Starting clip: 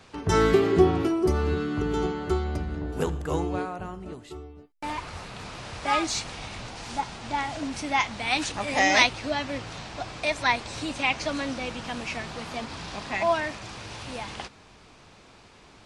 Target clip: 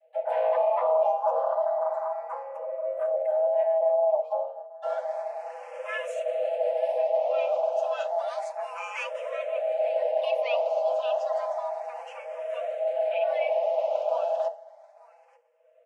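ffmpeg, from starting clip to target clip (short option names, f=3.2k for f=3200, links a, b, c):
-filter_complex "[0:a]agate=range=-33dB:threshold=-39dB:ratio=3:detection=peak,firequalizer=gain_entry='entry(110,0);entry(180,12);entry(280,-22);entry(430,-6);entry(630,-25);entry(980,-24);entry(2100,-14);entry(3000,-26);entry(12000,-28)':delay=0.05:min_phase=1,aeval=exprs='0.376*sin(PI/2*5.01*val(0)/0.376)':c=same,aecho=1:1:5.6:0.92,areverse,acompressor=threshold=-20dB:ratio=6,areverse,afreqshift=470,asplit=2[a][b];[b]asetrate=55563,aresample=44100,atempo=0.793701,volume=-12dB[c];[a][c]amix=inputs=2:normalize=0,equalizer=f=4.3k:t=o:w=2.1:g=-6.5,aecho=1:1:886:0.106,asplit=2[d][e];[e]afreqshift=0.31[f];[d][f]amix=inputs=2:normalize=1,volume=-1.5dB"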